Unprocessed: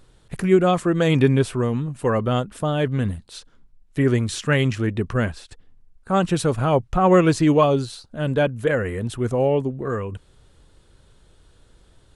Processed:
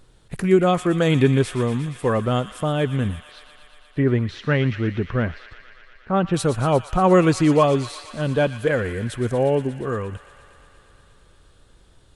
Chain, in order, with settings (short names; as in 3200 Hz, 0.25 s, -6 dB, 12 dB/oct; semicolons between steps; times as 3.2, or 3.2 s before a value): 3.27–6.34 air absorption 270 m; thin delay 0.118 s, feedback 82%, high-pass 1600 Hz, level -11 dB